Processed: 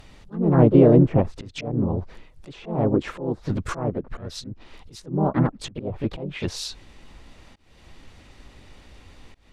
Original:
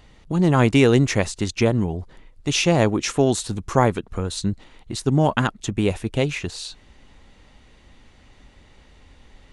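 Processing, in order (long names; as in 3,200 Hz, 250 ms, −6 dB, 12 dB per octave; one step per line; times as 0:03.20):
treble cut that deepens with the level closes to 630 Hz, closed at −16.5 dBFS
volume swells 302 ms
pitch-shifted copies added +4 semitones −4 dB, +5 semitones −10 dB, +7 semitones −16 dB
level +1 dB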